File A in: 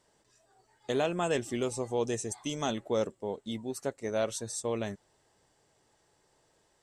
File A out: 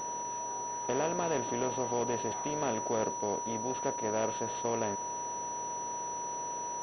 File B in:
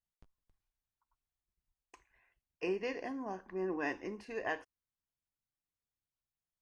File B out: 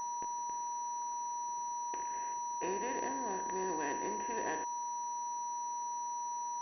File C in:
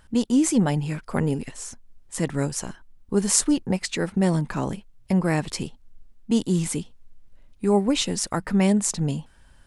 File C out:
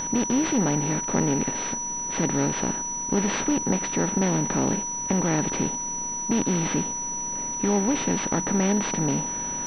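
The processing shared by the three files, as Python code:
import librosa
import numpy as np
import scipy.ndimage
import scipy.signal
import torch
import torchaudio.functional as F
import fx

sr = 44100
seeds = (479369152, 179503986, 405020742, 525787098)

y = fx.bin_compress(x, sr, power=0.4)
y = y + 10.0 ** (-30.0 / 20.0) * np.sin(2.0 * np.pi * 960.0 * np.arange(len(y)) / sr)
y = fx.pwm(y, sr, carrier_hz=5900.0)
y = y * 10.0 ** (-6.5 / 20.0)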